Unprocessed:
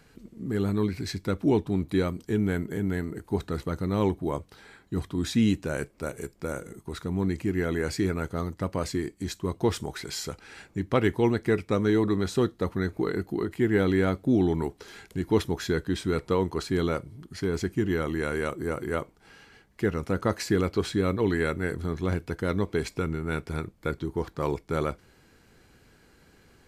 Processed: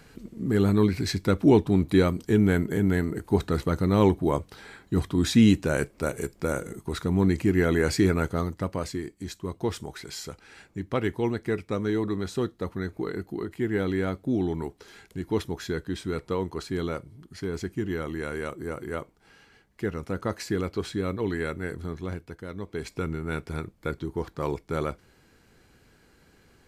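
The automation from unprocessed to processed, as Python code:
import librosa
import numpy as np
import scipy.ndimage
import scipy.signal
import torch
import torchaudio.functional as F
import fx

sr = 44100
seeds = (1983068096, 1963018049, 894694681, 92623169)

y = fx.gain(x, sr, db=fx.line((8.21, 5.0), (9.01, -3.5), (21.88, -3.5), (22.51, -11.0), (23.03, -1.0)))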